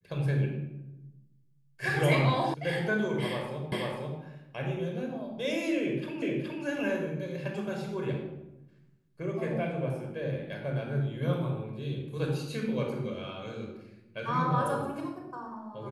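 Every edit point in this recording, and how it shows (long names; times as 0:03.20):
0:02.54: cut off before it has died away
0:03.72: the same again, the last 0.49 s
0:06.22: the same again, the last 0.42 s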